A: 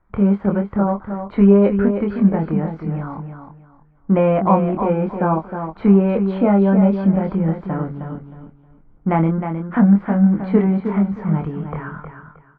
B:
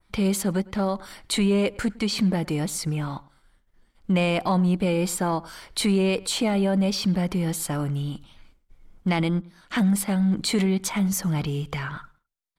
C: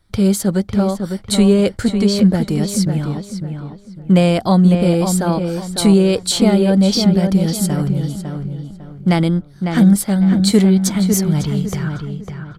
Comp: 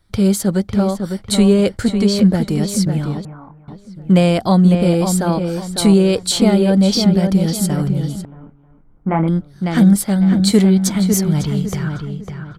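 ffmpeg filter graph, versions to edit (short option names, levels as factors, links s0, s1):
-filter_complex "[0:a]asplit=2[s0][s1];[2:a]asplit=3[s2][s3][s4];[s2]atrim=end=3.252[s5];[s0]atrim=start=3.248:end=3.682[s6];[s3]atrim=start=3.678:end=8.252[s7];[s1]atrim=start=8.248:end=9.282[s8];[s4]atrim=start=9.278[s9];[s5][s6]acrossfade=d=0.004:c1=hsin:c2=hsin[s10];[s10][s7]acrossfade=d=0.004:c1=hsin:c2=hsin[s11];[s11][s8]acrossfade=d=0.004:c1=hsin:c2=hsin[s12];[s12][s9]acrossfade=d=0.004:c1=hsin:c2=hsin"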